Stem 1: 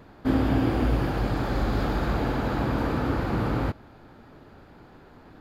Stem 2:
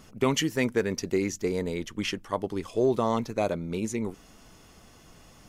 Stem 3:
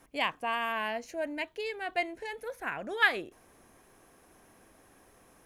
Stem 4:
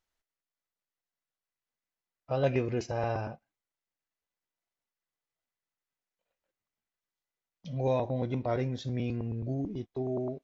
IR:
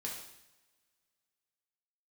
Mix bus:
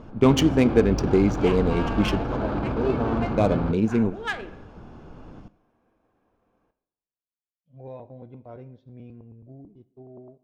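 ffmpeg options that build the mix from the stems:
-filter_complex "[0:a]alimiter=limit=-21.5dB:level=0:latency=1:release=20,volume=2dB[a];[1:a]lowshelf=f=390:g=7.5,volume=2dB,asplit=2[b][c];[c]volume=-12dB[d];[2:a]agate=range=-33dB:threshold=-54dB:ratio=3:detection=peak,adelay=1250,volume=-4.5dB,asplit=2[e][f];[f]volume=-5.5dB[g];[3:a]agate=range=-33dB:threshold=-32dB:ratio=3:detection=peak,volume=-12.5dB,asplit=3[h][i][j];[i]volume=-12.5dB[k];[j]apad=whole_len=241691[l];[b][l]sidechaincompress=threshold=-57dB:ratio=8:attack=16:release=155[m];[4:a]atrim=start_sample=2205[n];[d][g][k]amix=inputs=3:normalize=0[o];[o][n]afir=irnorm=-1:irlink=0[p];[a][m][e][h][p]amix=inputs=5:normalize=0,equalizer=f=1.9k:t=o:w=0.23:g=-10,adynamicsmooth=sensitivity=2:basefreq=2.2k"

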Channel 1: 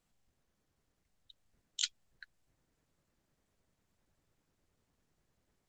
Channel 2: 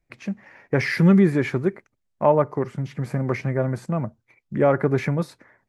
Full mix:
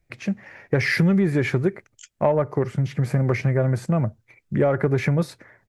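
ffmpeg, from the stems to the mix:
-filter_complex "[0:a]asplit=2[a][b];[b]afreqshift=0.43[c];[a][c]amix=inputs=2:normalize=1,adelay=200,volume=-1.5dB[d];[1:a]equalizer=f=100:t=o:w=0.67:g=5,equalizer=f=250:t=o:w=0.67:g=-4,equalizer=f=1k:t=o:w=0.67:g=-5,acontrast=34,volume=0dB,asplit=2[e][f];[f]apad=whole_len=259520[g];[d][g]sidechaincompress=threshold=-29dB:ratio=8:attack=5.4:release=390[h];[h][e]amix=inputs=2:normalize=0,acompressor=threshold=-16dB:ratio=6"

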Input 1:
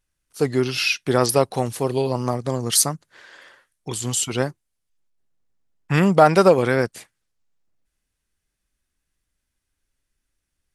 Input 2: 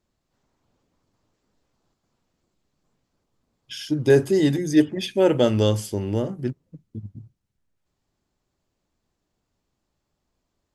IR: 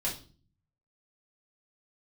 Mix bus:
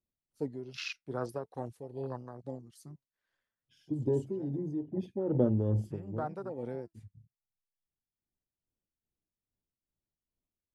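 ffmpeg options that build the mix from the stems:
-filter_complex "[0:a]flanger=delay=0.3:depth=7.5:regen=72:speed=0.49:shape=triangular,volume=-2dB,afade=t=out:st=2.19:d=0.7:silence=0.446684,afade=t=in:st=6.34:d=0.75:silence=0.398107,asplit=2[a][b];[1:a]tiltshelf=f=810:g=7.5,acompressor=threshold=-14dB:ratio=4,volume=-5dB[c];[b]apad=whole_len=473807[d];[c][d]sidechaincompress=threshold=-46dB:ratio=12:attack=32:release=1420[e];[a][e]amix=inputs=2:normalize=0,acrossover=split=420[f][g];[g]acompressor=threshold=-32dB:ratio=4[h];[f][h]amix=inputs=2:normalize=0,afwtdn=0.0141,tremolo=f=2.4:d=0.58"

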